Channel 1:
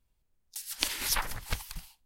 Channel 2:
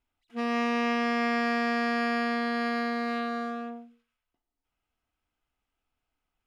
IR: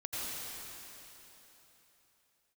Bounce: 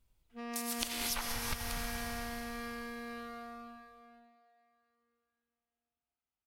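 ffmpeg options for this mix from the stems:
-filter_complex "[0:a]bandreject=frequency=1700:width=15,volume=-1.5dB,asplit=2[link_01][link_02];[link_02]volume=-4dB[link_03];[1:a]highpass=56,volume=-14.5dB,asplit=3[link_04][link_05][link_06];[link_05]volume=-13dB[link_07];[link_06]volume=-11.5dB[link_08];[2:a]atrim=start_sample=2205[link_09];[link_03][link_07]amix=inputs=2:normalize=0[link_10];[link_10][link_09]afir=irnorm=-1:irlink=0[link_11];[link_08]aecho=0:1:494:1[link_12];[link_01][link_04][link_11][link_12]amix=inputs=4:normalize=0,acompressor=threshold=-33dB:ratio=6"

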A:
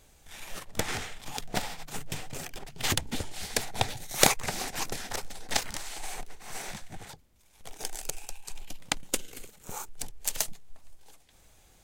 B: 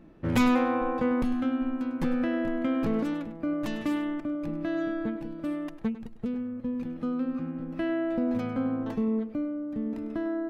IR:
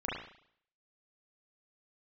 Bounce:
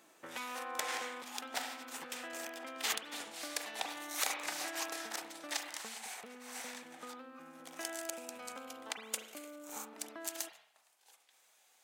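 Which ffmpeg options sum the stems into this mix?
-filter_complex "[0:a]volume=-7.5dB,asplit=2[link_01][link_02];[link_02]volume=-8dB[link_03];[1:a]acompressor=threshold=-33dB:ratio=6,volume=0dB[link_04];[2:a]atrim=start_sample=2205[link_05];[link_03][link_05]afir=irnorm=-1:irlink=0[link_06];[link_01][link_04][link_06]amix=inputs=3:normalize=0,highpass=800,alimiter=limit=-18.5dB:level=0:latency=1:release=237"

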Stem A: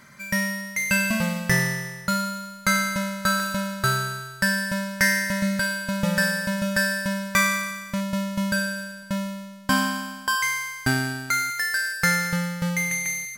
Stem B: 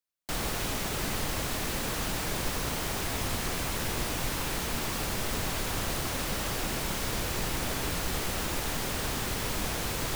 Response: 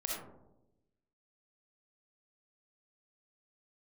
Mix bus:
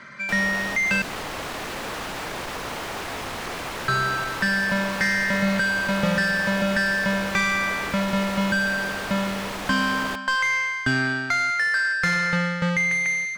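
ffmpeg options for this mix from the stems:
-filter_complex "[0:a]lowpass=5100,equalizer=frequency=810:width=2.4:gain=-7.5,volume=1.5dB,asplit=3[link_01][link_02][link_03];[link_01]atrim=end=1.02,asetpts=PTS-STARTPTS,afade=type=out:start_time=1.016:duration=0.004:curve=hsin[link_04];[link_02]atrim=start=1.02:end=3.88,asetpts=PTS-STARTPTS,volume=0[link_05];[link_03]atrim=start=3.88,asetpts=PTS-STARTPTS,afade=type=in:duration=0.004:curve=hsin[link_06];[link_04][link_05][link_06]concat=n=3:v=0:a=1[link_07];[1:a]asoftclip=type=tanh:threshold=-25dB,volume=-2dB[link_08];[link_07][link_08]amix=inputs=2:normalize=0,acrossover=split=250|3000[link_09][link_10][link_11];[link_10]acompressor=threshold=-25dB:ratio=6[link_12];[link_09][link_12][link_11]amix=inputs=3:normalize=0,asplit=2[link_13][link_14];[link_14]highpass=frequency=720:poles=1,volume=17dB,asoftclip=type=tanh:threshold=-10.5dB[link_15];[link_13][link_15]amix=inputs=2:normalize=0,lowpass=frequency=1700:poles=1,volume=-6dB"

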